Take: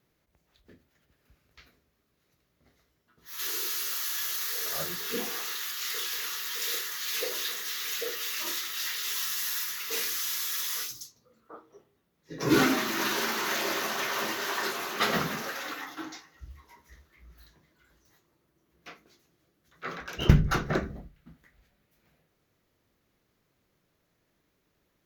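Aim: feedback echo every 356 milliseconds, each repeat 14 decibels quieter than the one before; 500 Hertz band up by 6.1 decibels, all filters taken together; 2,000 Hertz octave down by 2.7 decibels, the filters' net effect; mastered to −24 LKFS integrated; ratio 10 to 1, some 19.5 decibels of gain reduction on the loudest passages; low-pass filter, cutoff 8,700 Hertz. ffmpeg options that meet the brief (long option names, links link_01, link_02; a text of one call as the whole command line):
ffmpeg -i in.wav -af "lowpass=8700,equalizer=frequency=500:width_type=o:gain=8,equalizer=frequency=2000:width_type=o:gain=-4,acompressor=threshold=-34dB:ratio=10,aecho=1:1:356|712:0.2|0.0399,volume=13dB" out.wav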